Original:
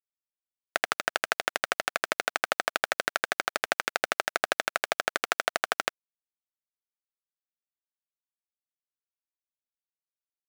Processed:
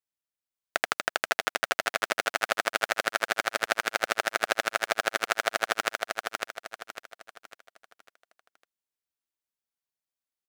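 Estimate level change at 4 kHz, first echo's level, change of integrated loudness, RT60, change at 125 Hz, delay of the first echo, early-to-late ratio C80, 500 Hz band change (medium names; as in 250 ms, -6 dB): +1.5 dB, -4.0 dB, +1.0 dB, no reverb, +1.5 dB, 551 ms, no reverb, +1.5 dB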